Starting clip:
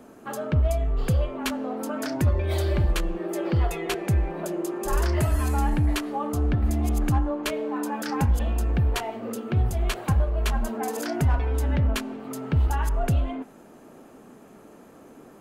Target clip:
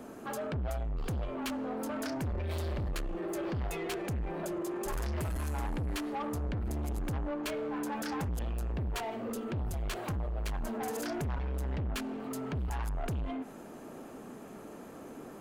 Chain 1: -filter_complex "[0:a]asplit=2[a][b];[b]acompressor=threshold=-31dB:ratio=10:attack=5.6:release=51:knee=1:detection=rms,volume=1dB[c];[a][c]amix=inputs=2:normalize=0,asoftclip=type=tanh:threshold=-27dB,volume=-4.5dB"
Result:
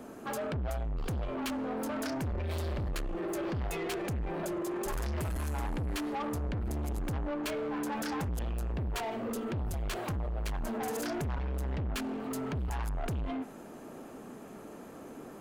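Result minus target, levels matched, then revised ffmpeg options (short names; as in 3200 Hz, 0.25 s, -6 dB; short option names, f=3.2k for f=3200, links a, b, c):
compressor: peak gain reduction -9.5 dB
-filter_complex "[0:a]asplit=2[a][b];[b]acompressor=threshold=-41.5dB:ratio=10:attack=5.6:release=51:knee=1:detection=rms,volume=1dB[c];[a][c]amix=inputs=2:normalize=0,asoftclip=type=tanh:threshold=-27dB,volume=-4.5dB"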